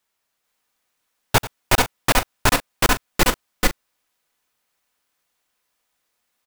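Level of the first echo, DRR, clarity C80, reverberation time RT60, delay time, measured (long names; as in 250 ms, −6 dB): −16.5 dB, no reverb audible, no reverb audible, no reverb audible, 89 ms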